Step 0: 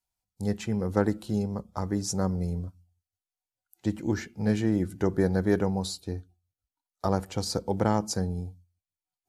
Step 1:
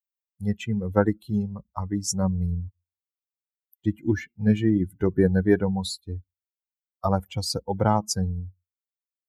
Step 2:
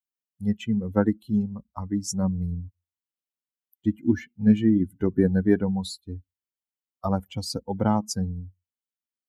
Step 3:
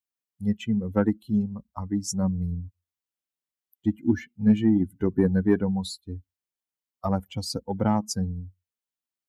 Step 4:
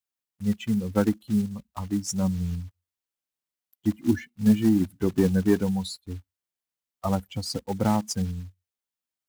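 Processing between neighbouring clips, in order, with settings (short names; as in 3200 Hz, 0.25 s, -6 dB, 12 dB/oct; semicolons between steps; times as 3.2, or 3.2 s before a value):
per-bin expansion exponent 2; gain +7.5 dB
small resonant body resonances 240/3000 Hz, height 11 dB, ringing for 45 ms; gain -4 dB
soft clip -8 dBFS, distortion -23 dB
block floating point 5-bit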